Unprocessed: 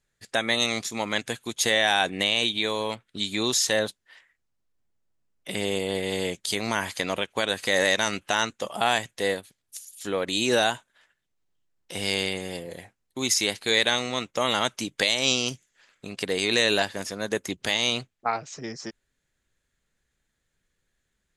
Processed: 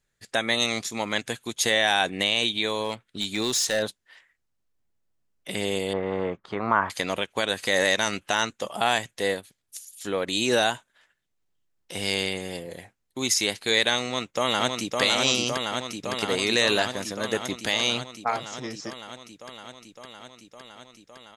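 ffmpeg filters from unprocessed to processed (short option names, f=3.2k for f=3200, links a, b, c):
-filter_complex "[0:a]asettb=1/sr,asplit=3[a][b][c];[a]atrim=end=2.844[d];[b]atrim=start=2.84:end=3.83,asetpts=PTS-STARTPTS,afade=t=in:d=0.004:c=qsin,afade=t=out:st=0.986:d=0.004:c=qsin,asoftclip=type=hard:threshold=-19dB[e];[c]atrim=start=3.826[f];[d][e]acrossfade=d=0.004:c1=hsin:c2=qsin[g];[g][f]acrossfade=d=0.004:c1=qsin:c2=hsin,asettb=1/sr,asplit=3[h][i][j];[h]atrim=end=5.934[k];[i]atrim=start=5.93:end=6.9,asetpts=PTS-STARTPTS,afade=t=in:d=0.004:c=qsin,afade=t=out:st=0.966:d=0.004:c=qsin,lowpass=f=1.2k:t=q:w=4.2[l];[j]atrim=start=6.896[m];[k][l]acrossfade=d=0.004:c1=hsin:c2=qsin[n];[n][m]acrossfade=d=0.004:c1=qsin:c2=hsin,asplit=2[o][p];[p]afade=t=in:st=14.03:d=0.01,afade=t=out:st=15.01:d=0.01,aecho=0:1:560|1120|1680|2240|2800|3360|3920|4480|5040|5600|6160|6720:0.707946|0.566357|0.453085|0.362468|0.289975|0.23198|0.185584|0.148467|0.118774|0.0950189|0.0760151|0.0608121[q];[o][q]amix=inputs=2:normalize=0"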